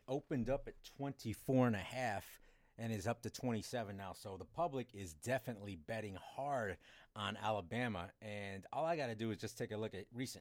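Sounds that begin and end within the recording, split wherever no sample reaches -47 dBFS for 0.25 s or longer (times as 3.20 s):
2.79–6.74 s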